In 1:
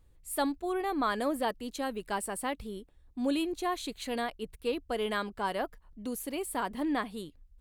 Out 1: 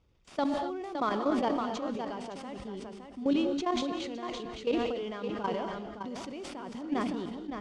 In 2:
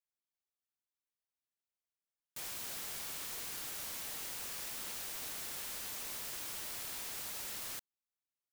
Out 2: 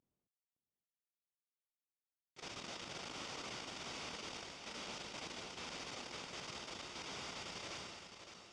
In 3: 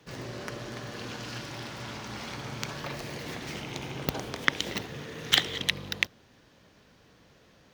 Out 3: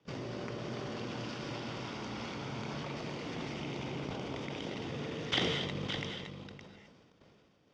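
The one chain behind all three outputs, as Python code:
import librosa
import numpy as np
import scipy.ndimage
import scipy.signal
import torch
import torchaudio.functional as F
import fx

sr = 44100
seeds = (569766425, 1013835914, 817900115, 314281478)

p1 = fx.cvsd(x, sr, bps=64000)
p2 = fx.highpass(p1, sr, hz=190.0, slope=6)
p3 = fx.peak_eq(p2, sr, hz=1700.0, db=-7.0, octaves=0.22)
p4 = fx.level_steps(p3, sr, step_db=15)
p5 = scipy.signal.sosfilt(scipy.signal.butter(4, 5600.0, 'lowpass', fs=sr, output='sos'), p4)
p6 = fx.low_shelf(p5, sr, hz=450.0, db=8.0)
p7 = fx.notch(p6, sr, hz=4100.0, q=9.5)
p8 = p7 + fx.echo_single(p7, sr, ms=564, db=-7.5, dry=0)
p9 = fx.rev_gated(p8, sr, seeds[0], gate_ms=280, shape='rising', drr_db=9.5)
y = fx.sustainer(p9, sr, db_per_s=28.0)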